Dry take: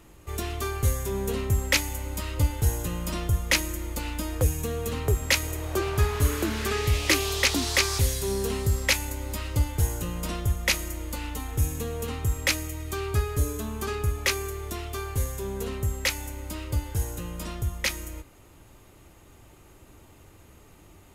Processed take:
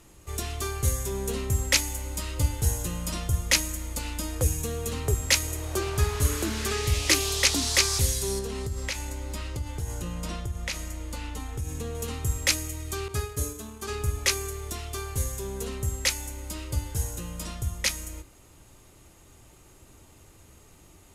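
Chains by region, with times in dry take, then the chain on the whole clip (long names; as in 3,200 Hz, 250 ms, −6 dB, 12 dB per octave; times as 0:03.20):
0:08.39–0:11.95: low-pass filter 3,800 Hz 6 dB per octave + downward compressor, threshold −26 dBFS
0:13.08–0:13.89: downward expander −28 dBFS + low-shelf EQ 75 Hz −9.5 dB
whole clip: low-pass filter 11,000 Hz 12 dB per octave; bass and treble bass +2 dB, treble +8 dB; mains-hum notches 50/100/150/200/250/300/350 Hz; level −2.5 dB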